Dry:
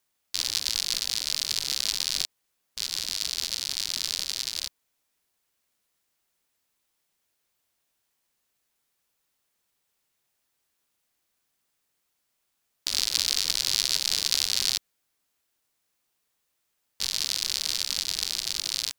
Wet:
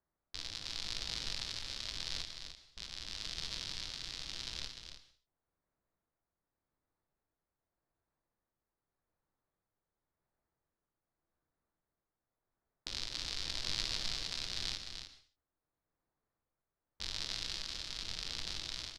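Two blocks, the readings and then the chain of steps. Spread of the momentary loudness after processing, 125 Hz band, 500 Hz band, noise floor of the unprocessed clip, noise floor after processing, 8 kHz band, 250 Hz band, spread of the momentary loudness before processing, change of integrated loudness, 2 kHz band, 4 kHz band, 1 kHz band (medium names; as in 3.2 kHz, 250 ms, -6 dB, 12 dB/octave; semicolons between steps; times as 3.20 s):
11 LU, no reading, -3.5 dB, -77 dBFS, under -85 dBFS, -18.0 dB, -2.0 dB, 8 LU, -13.5 dB, -9.0 dB, -12.5 dB, -6.0 dB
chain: local Wiener filter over 15 samples; bass shelf 65 Hz +11 dB; tremolo 0.87 Hz, depth 39%; in parallel at -7.5 dB: hard clipper -20 dBFS, distortion -6 dB; on the sum: tape spacing loss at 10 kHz 21 dB; delay 300 ms -7.5 dB; gated-style reverb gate 300 ms falling, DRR 9.5 dB; endings held to a fixed fall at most 140 dB/s; trim -4 dB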